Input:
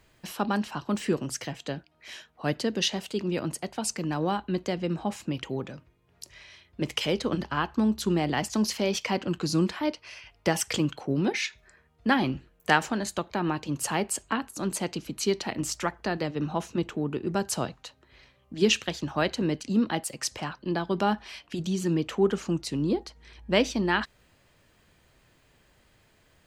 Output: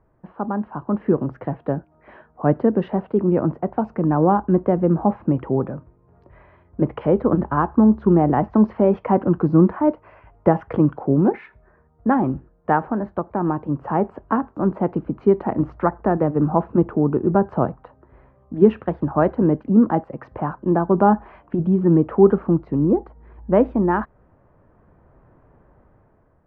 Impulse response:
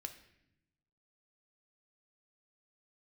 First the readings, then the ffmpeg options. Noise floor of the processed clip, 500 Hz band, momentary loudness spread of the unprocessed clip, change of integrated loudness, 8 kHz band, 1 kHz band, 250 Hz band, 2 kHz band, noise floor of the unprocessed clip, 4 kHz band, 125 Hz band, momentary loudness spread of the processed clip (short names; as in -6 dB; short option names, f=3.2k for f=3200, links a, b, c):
-57 dBFS, +10.0 dB, 10 LU, +8.5 dB, under -40 dB, +8.5 dB, +10.0 dB, -4.0 dB, -64 dBFS, under -20 dB, +10.5 dB, 10 LU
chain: -af "dynaudnorm=f=430:g=5:m=10dB,lowpass=f=1.2k:w=0.5412,lowpass=f=1.2k:w=1.3066,volume=2dB"